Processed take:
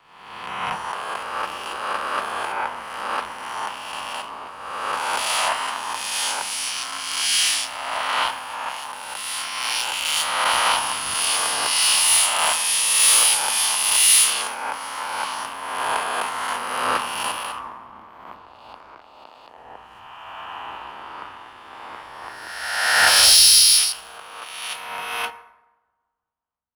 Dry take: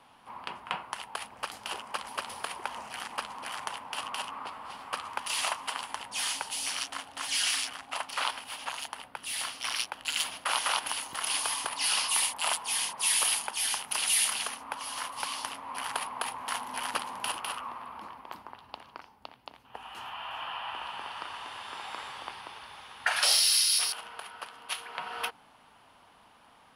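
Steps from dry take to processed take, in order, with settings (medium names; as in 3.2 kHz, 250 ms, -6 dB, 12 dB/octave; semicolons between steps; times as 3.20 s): reverse spectral sustain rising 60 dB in 2.47 s; waveshaping leveller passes 2; on a send at -10 dB: reverberation RT60 3.0 s, pre-delay 7 ms; on the sum: three bands expanded up and down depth 100%; trim -3.5 dB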